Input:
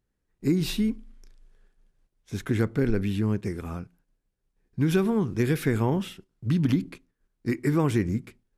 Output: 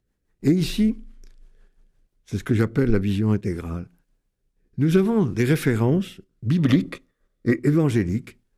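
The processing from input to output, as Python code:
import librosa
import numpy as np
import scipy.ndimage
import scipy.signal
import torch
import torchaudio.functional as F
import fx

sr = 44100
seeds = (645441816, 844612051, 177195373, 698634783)

y = fx.rotary_switch(x, sr, hz=6.0, then_hz=0.7, switch_at_s=3.07)
y = fx.small_body(y, sr, hz=(550.0, 1200.0, 1900.0, 3500.0), ring_ms=20, db=11, at=(6.58, 7.59))
y = fx.doppler_dist(y, sr, depth_ms=0.1)
y = y * librosa.db_to_amplitude(6.0)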